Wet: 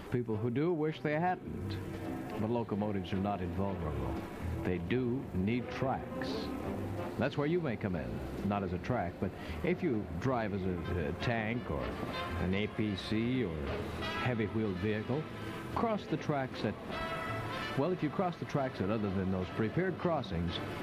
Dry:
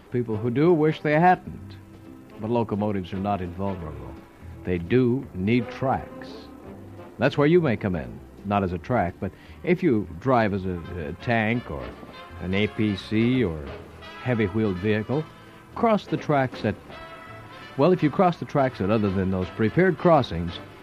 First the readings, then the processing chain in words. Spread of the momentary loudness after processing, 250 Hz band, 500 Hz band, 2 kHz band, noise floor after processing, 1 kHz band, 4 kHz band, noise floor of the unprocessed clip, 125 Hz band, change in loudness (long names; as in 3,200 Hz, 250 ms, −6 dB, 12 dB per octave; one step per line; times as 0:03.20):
5 LU, −10.0 dB, −11.0 dB, −9.5 dB, −44 dBFS, −11.5 dB, −6.5 dB, −46 dBFS, −9.0 dB, −11.5 dB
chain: downward compressor 5 to 1, threshold −35 dBFS, peak gain reduction 20 dB
feedback delay with all-pass diffusion 974 ms, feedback 72%, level −14 dB
level +3.5 dB